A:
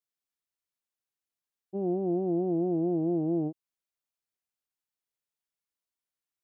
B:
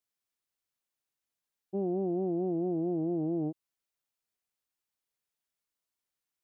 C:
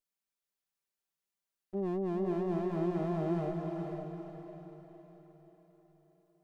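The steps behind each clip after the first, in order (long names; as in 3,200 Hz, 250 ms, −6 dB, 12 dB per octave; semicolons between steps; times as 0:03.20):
brickwall limiter −26 dBFS, peak gain reduction 6 dB; level +2 dB
lower of the sound and its delayed copy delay 5.1 ms; feedback delay with all-pass diffusion 466 ms, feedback 46%, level −3.5 dB; level −2.5 dB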